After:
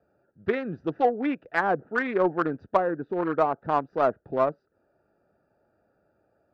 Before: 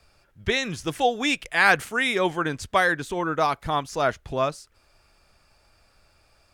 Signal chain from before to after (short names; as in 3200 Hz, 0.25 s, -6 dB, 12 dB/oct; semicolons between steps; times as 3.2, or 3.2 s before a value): Wiener smoothing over 41 samples; HPF 220 Hz 12 dB/oct; treble ducked by the level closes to 580 Hz, closed at -18 dBFS; steep low-pass 5100 Hz; resonant high shelf 2000 Hz -9 dB, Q 1.5; in parallel at -6 dB: soft clip -24 dBFS, distortion -8 dB